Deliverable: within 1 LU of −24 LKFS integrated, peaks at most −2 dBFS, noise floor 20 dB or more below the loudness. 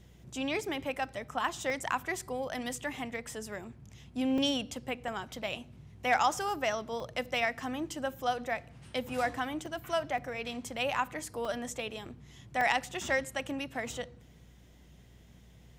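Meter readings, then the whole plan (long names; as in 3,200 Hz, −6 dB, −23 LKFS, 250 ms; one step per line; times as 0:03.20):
number of dropouts 8; longest dropout 2.2 ms; mains hum 60 Hz; hum harmonics up to 180 Hz; level of the hum −57 dBFS; integrated loudness −34.0 LKFS; sample peak −13.0 dBFS; target loudness −24.0 LKFS
→ repair the gap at 0:01.70/0:04.38/0:05.08/0:07.00/0:09.66/0:10.18/0:11.45/0:12.61, 2.2 ms
hum removal 60 Hz, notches 3
level +10 dB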